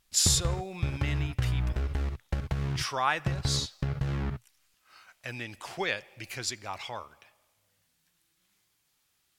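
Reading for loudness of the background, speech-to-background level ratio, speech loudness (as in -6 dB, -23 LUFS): -33.0 LUFS, 1.0 dB, -32.0 LUFS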